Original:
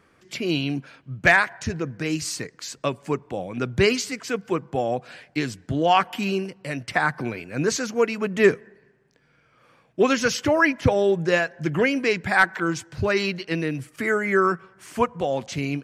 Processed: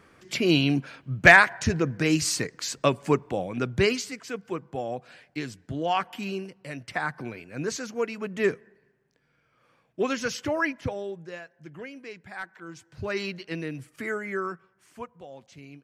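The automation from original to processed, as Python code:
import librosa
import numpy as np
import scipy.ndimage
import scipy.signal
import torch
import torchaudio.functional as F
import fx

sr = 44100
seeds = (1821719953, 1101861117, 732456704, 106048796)

y = fx.gain(x, sr, db=fx.line((3.15, 3.0), (4.26, -7.5), (10.64, -7.5), (11.34, -19.5), (12.59, -19.5), (13.15, -7.5), (14.04, -7.5), (15.24, -19.5)))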